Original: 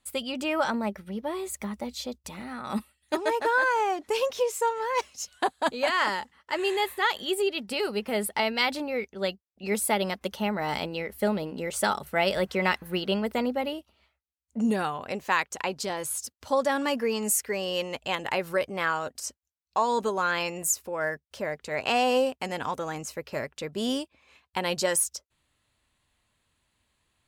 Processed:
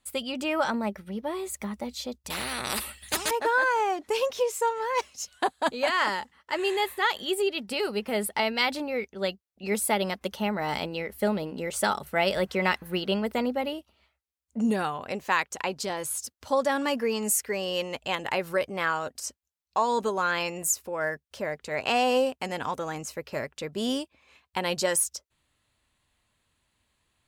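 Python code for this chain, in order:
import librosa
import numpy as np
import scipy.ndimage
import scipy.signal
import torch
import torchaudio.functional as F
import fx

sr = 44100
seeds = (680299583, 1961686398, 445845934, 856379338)

y = fx.spectral_comp(x, sr, ratio=4.0, at=(2.3, 3.31))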